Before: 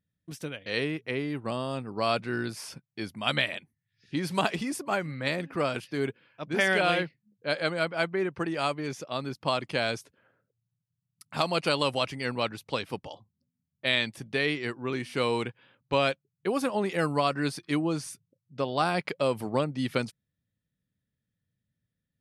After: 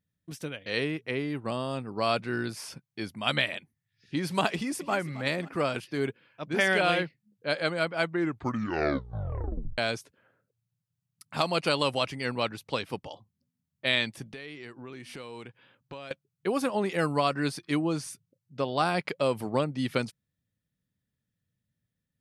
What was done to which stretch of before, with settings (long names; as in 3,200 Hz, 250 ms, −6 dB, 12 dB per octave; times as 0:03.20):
0:04.51–0:04.94: delay throw 270 ms, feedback 45%, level −15.5 dB
0:08.02: tape stop 1.76 s
0:14.31–0:16.11: downward compressor 5 to 1, threshold −40 dBFS